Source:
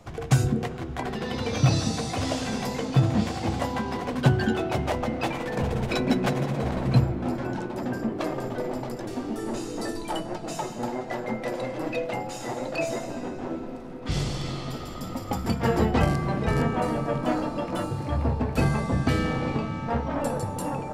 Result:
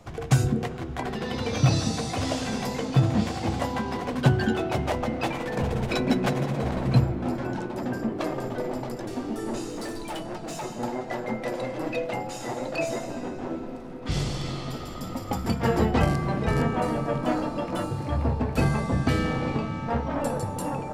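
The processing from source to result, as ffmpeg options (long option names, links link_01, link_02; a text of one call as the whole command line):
ffmpeg -i in.wav -filter_complex "[0:a]asettb=1/sr,asplit=3[link_01][link_02][link_03];[link_01]atrim=end=9.694[link_04];[link_02]atrim=start=9.69:end=10.64,asetpts=PTS-STARTPTS,afade=type=in:duration=0.004:curve=qsin,afade=type=out:start_time=0.946:duration=0.004:curve=qsin,volume=30dB,asoftclip=hard,volume=-30dB[link_05];[link_03]atrim=start=10.636[link_06];[link_04][link_05]acrossfade=duration=0.004:curve1=hsin:curve2=qsin[link_07];[link_07][link_06]acrossfade=duration=0.004:curve1=qsin:curve2=hsin" out.wav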